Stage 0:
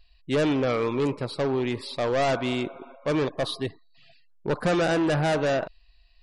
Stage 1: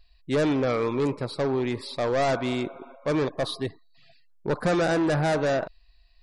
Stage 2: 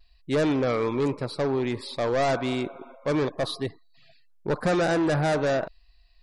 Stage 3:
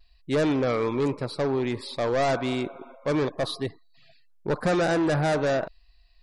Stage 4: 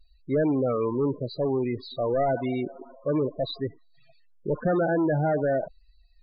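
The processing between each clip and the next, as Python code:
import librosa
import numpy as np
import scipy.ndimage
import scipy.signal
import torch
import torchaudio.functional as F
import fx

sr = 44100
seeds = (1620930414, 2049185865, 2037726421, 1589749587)

y1 = fx.peak_eq(x, sr, hz=2900.0, db=-6.0, octaves=0.35)
y2 = fx.vibrato(y1, sr, rate_hz=0.89, depth_cents=28.0)
y3 = y2
y4 = fx.spec_topn(y3, sr, count=16)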